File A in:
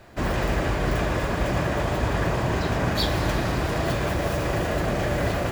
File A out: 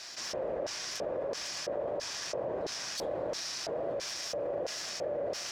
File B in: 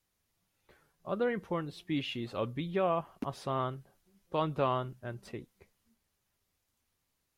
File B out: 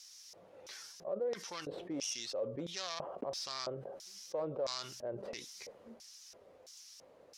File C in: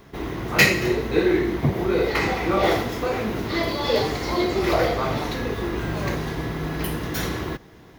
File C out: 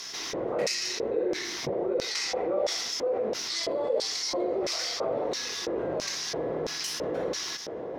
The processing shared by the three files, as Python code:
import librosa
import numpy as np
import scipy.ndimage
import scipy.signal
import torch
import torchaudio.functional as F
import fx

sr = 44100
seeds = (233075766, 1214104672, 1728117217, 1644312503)

y = fx.tracing_dist(x, sr, depth_ms=0.22)
y = fx.filter_lfo_bandpass(y, sr, shape='square', hz=1.5, low_hz=530.0, high_hz=5500.0, q=5.0)
y = fx.env_flatten(y, sr, amount_pct=70)
y = y * 10.0 ** (-3.0 / 20.0)